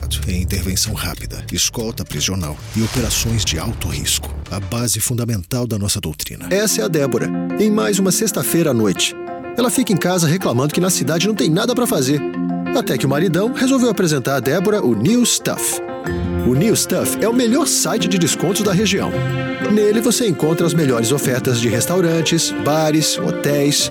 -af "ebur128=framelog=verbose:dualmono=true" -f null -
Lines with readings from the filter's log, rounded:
Integrated loudness:
  I:         -13.9 LUFS
  Threshold: -24.0 LUFS
Loudness range:
  LRA:         3.3 LU
  Threshold: -33.9 LUFS
  LRA low:   -16.1 LUFS
  LRA high:  -12.8 LUFS